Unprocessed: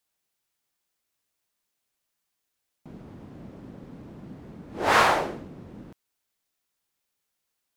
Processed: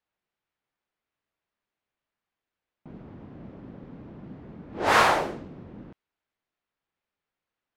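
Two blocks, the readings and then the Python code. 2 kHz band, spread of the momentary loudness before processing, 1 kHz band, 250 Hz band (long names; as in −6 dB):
0.0 dB, 21 LU, 0.0 dB, 0.0 dB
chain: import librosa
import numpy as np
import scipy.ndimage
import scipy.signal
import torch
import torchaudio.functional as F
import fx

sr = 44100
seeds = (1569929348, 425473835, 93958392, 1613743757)

y = fx.env_lowpass(x, sr, base_hz=2400.0, full_db=-22.0)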